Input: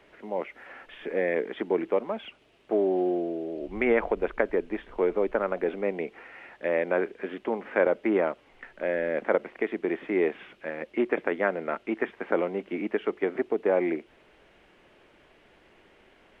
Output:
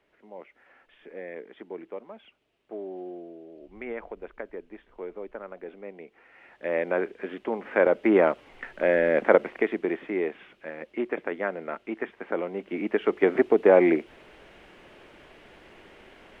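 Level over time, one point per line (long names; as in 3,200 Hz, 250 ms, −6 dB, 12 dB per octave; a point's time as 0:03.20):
0:06.10 −12.5 dB
0:06.77 −0.5 dB
0:07.52 −0.5 dB
0:08.30 +6 dB
0:09.43 +6 dB
0:10.24 −3.5 dB
0:12.43 −3.5 dB
0:13.31 +7 dB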